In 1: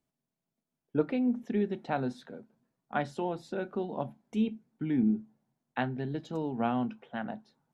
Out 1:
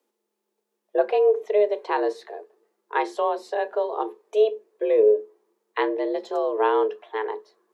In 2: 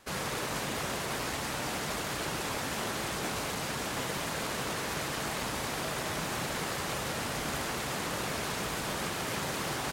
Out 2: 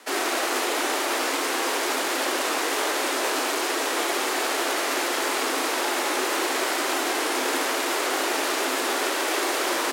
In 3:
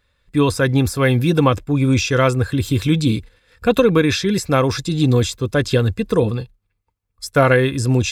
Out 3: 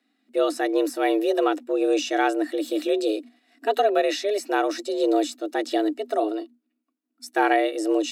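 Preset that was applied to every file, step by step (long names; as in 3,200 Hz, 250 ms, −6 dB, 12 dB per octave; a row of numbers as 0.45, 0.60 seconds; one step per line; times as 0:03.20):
frequency shifter +210 Hz
harmonic and percussive parts rebalanced percussive −4 dB
loudness normalisation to −24 LKFS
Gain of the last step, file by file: +9.5, +11.0, −5.5 decibels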